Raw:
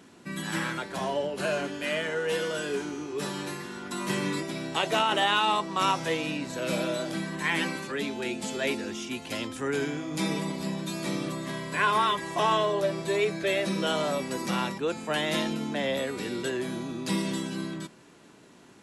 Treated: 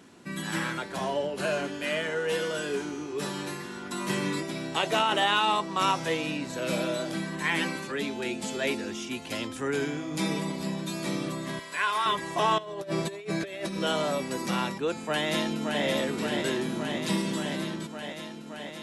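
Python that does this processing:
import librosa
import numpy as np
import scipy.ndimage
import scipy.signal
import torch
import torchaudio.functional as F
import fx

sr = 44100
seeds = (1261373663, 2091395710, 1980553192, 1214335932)

y = fx.highpass(x, sr, hz=1200.0, slope=6, at=(11.59, 12.06))
y = fx.over_compress(y, sr, threshold_db=-32.0, ratio=-0.5, at=(12.58, 13.81))
y = fx.echo_throw(y, sr, start_s=15.04, length_s=0.8, ms=570, feedback_pct=80, wet_db=-4.0)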